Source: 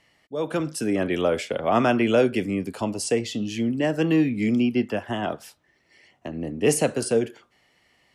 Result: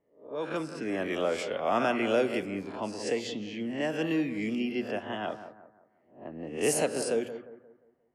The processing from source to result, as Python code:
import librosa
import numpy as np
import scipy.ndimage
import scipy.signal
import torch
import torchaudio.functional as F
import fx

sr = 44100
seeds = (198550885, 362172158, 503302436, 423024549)

y = fx.spec_swells(x, sr, rise_s=0.45)
y = fx.env_lowpass(y, sr, base_hz=540.0, full_db=-18.5)
y = fx.low_shelf(y, sr, hz=180.0, db=-10.5)
y = fx.hum_notches(y, sr, base_hz=60, count=2)
y = fx.echo_bbd(y, sr, ms=176, stages=2048, feedback_pct=38, wet_db=-11.5)
y = y * 10.0 ** (-6.5 / 20.0)